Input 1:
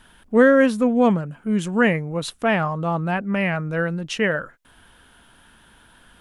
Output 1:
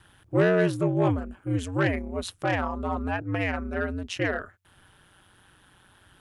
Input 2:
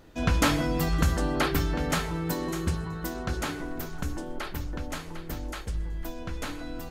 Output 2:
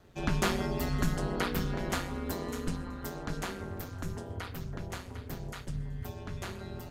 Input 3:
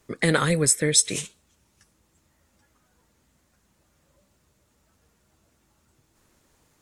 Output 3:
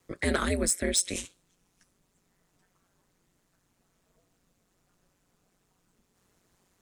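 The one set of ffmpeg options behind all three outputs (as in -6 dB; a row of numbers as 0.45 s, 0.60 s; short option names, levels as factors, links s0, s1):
-filter_complex "[0:a]aeval=exprs='val(0)*sin(2*PI*92*n/s)':c=same,acrossover=split=280[s0][s1];[s1]asoftclip=type=tanh:threshold=0.224[s2];[s0][s2]amix=inputs=2:normalize=0,volume=0.75"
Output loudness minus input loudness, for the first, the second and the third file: -6.5 LU, -5.5 LU, -7.0 LU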